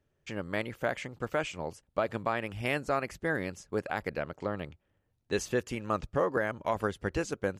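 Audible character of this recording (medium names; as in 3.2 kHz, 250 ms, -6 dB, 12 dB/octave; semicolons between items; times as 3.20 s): noise floor -77 dBFS; spectral tilt -5.0 dB/octave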